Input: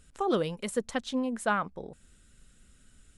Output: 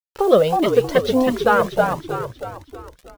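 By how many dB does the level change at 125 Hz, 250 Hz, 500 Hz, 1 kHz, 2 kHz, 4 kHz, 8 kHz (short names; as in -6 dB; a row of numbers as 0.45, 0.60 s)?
+13.5, +10.5, +16.5, +13.0, +10.5, +10.5, +4.0 dB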